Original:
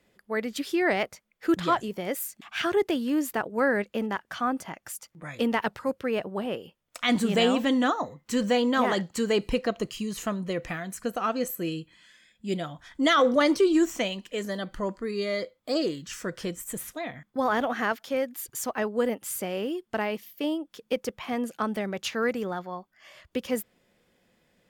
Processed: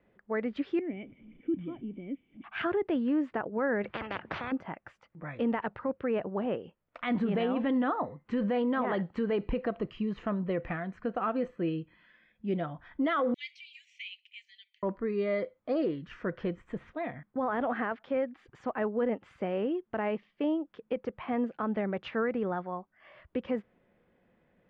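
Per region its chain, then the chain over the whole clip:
0.79–2.44 zero-crossing step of -35.5 dBFS + vocal tract filter i
3.84–4.52 HPF 150 Hz + tone controls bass +11 dB, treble -7 dB + spectral compressor 10:1
13.34–14.83 steep high-pass 2200 Hz 72 dB/oct + high shelf 9300 Hz +10 dB
whole clip: Bessel low-pass 1700 Hz, order 4; limiter -22 dBFS

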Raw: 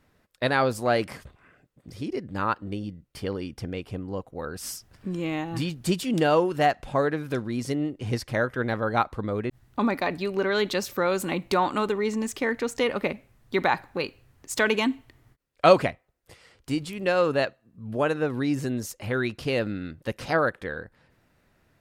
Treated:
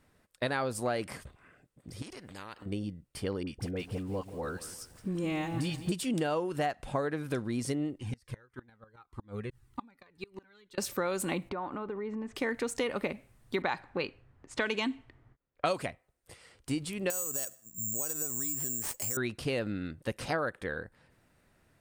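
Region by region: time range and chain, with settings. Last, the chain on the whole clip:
2.02–2.66 tone controls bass -1 dB, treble -3 dB + compressor, threshold -36 dBFS + spectral compressor 2:1
3.43–5.92 de-esser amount 85% + dispersion highs, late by 42 ms, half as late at 1000 Hz + lo-fi delay 0.171 s, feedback 55%, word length 8-bit, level -14 dB
7.98–10.78 bell 640 Hz -14 dB 0.29 oct + flipped gate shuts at -18 dBFS, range -27 dB + cascading flanger falling 1.7 Hz
11.49–12.36 LPF 1700 Hz + compressor 4:1, threshold -32 dBFS
13.62–15.86 low-pass opened by the level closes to 1400 Hz, open at -14 dBFS + high shelf 3800 Hz +9.5 dB
17.1–19.17 compressor 3:1, threshold -38 dBFS + careless resampling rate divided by 6×, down none, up zero stuff
whole clip: bell 8800 Hz +8 dB 0.37 oct; compressor 6:1, threshold -25 dBFS; gain -2.5 dB

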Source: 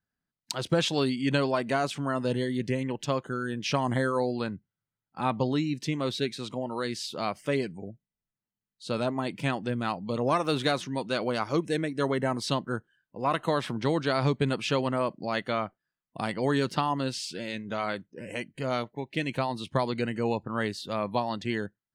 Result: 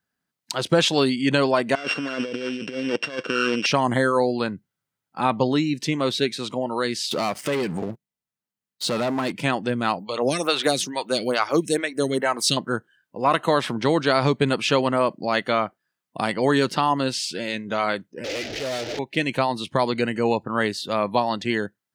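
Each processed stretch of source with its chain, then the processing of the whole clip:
1.75–3.66 sample sorter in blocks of 16 samples + negative-ratio compressor -33 dBFS, ratio -0.5 + speaker cabinet 210–6000 Hz, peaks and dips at 280 Hz +4 dB, 490 Hz +7 dB, 850 Hz -7 dB, 1500 Hz +9 dB, 3300 Hz +5 dB
7.11–9.32 sample leveller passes 3 + compressor 12:1, threshold -28 dBFS
9.99–12.57 high shelf 2800 Hz +11 dB + notch 1000 Hz, Q 25 + photocell phaser 2.3 Hz
18.24–18.99 delta modulation 32 kbps, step -27 dBFS + fixed phaser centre 440 Hz, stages 4 + overloaded stage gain 31.5 dB
whole clip: HPF 210 Hz 6 dB/oct; maximiser +13.5 dB; gain -5.5 dB

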